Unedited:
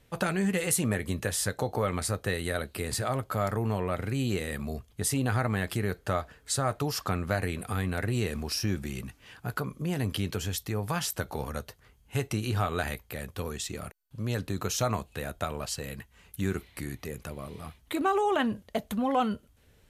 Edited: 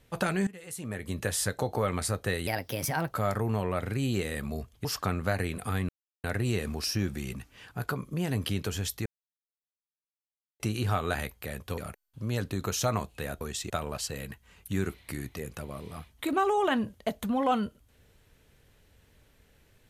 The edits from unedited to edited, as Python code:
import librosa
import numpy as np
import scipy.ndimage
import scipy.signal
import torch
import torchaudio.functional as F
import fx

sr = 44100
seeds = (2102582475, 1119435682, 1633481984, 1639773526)

y = fx.edit(x, sr, fx.fade_in_from(start_s=0.47, length_s=0.78, curve='qua', floor_db=-19.0),
    fx.speed_span(start_s=2.47, length_s=0.81, speed=1.25),
    fx.cut(start_s=5.01, length_s=1.87),
    fx.insert_silence(at_s=7.92, length_s=0.35),
    fx.silence(start_s=10.74, length_s=1.54),
    fx.move(start_s=13.46, length_s=0.29, to_s=15.38), tone=tone)